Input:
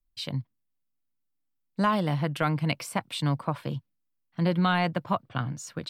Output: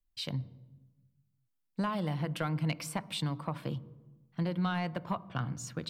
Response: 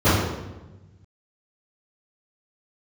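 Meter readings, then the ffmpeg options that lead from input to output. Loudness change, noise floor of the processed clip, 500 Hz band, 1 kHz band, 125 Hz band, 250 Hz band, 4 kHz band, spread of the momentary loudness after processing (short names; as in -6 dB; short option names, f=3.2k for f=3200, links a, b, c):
-7.0 dB, -79 dBFS, -8.0 dB, -9.0 dB, -5.5 dB, -6.0 dB, -5.0 dB, 9 LU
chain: -filter_complex "[0:a]acompressor=threshold=-26dB:ratio=6,asoftclip=type=tanh:threshold=-16.5dB,asplit=2[a][b];[1:a]atrim=start_sample=2205,asetrate=41454,aresample=44100[c];[b][c]afir=irnorm=-1:irlink=0,volume=-41dB[d];[a][d]amix=inputs=2:normalize=0,volume=-2.5dB"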